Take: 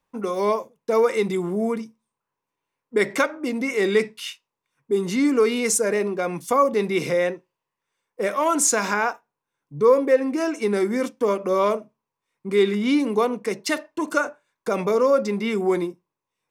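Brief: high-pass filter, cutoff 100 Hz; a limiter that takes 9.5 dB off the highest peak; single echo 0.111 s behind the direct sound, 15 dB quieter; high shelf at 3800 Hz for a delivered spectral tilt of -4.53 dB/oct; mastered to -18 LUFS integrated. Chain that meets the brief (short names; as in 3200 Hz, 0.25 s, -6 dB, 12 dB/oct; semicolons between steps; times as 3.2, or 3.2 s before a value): HPF 100 Hz; high shelf 3800 Hz -3.5 dB; limiter -15.5 dBFS; echo 0.111 s -15 dB; gain +7 dB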